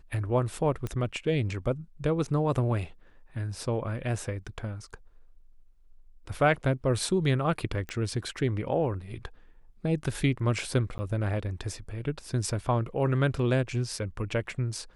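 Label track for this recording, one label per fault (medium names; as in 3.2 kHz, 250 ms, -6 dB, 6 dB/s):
0.870000	0.870000	pop -20 dBFS
7.890000	7.890000	pop -23 dBFS
10.980000	10.990000	dropout 10 ms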